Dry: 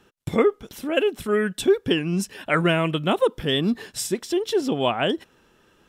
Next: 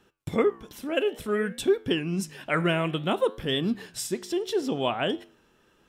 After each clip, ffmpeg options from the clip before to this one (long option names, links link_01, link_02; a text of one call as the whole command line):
ffmpeg -i in.wav -af "flanger=delay=10:depth=8.2:regen=-86:speed=0.58:shape=sinusoidal" out.wav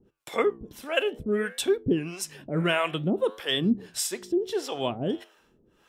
ffmpeg -i in.wav -filter_complex "[0:a]acrossover=split=500[link_01][link_02];[link_01]aeval=exprs='val(0)*(1-1/2+1/2*cos(2*PI*1.6*n/s))':channel_layout=same[link_03];[link_02]aeval=exprs='val(0)*(1-1/2-1/2*cos(2*PI*1.6*n/s))':channel_layout=same[link_04];[link_03][link_04]amix=inputs=2:normalize=0,volume=5dB" out.wav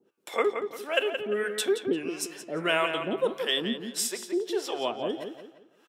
ffmpeg -i in.wav -filter_complex "[0:a]highpass=360,asplit=2[link_01][link_02];[link_02]adelay=173,lowpass=frequency=4100:poles=1,volume=-7dB,asplit=2[link_03][link_04];[link_04]adelay=173,lowpass=frequency=4100:poles=1,volume=0.36,asplit=2[link_05][link_06];[link_06]adelay=173,lowpass=frequency=4100:poles=1,volume=0.36,asplit=2[link_07][link_08];[link_08]adelay=173,lowpass=frequency=4100:poles=1,volume=0.36[link_09];[link_03][link_05][link_07][link_09]amix=inputs=4:normalize=0[link_10];[link_01][link_10]amix=inputs=2:normalize=0" out.wav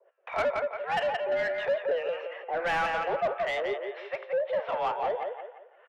ffmpeg -i in.wav -filter_complex "[0:a]crystalizer=i=2:c=0,highpass=frequency=210:width_type=q:width=0.5412,highpass=frequency=210:width_type=q:width=1.307,lowpass=frequency=2400:width_type=q:width=0.5176,lowpass=frequency=2400:width_type=q:width=0.7071,lowpass=frequency=2400:width_type=q:width=1.932,afreqshift=170,asplit=2[link_01][link_02];[link_02]highpass=frequency=720:poles=1,volume=20dB,asoftclip=type=tanh:threshold=-13dB[link_03];[link_01][link_03]amix=inputs=2:normalize=0,lowpass=frequency=1500:poles=1,volume=-6dB,volume=-5.5dB" out.wav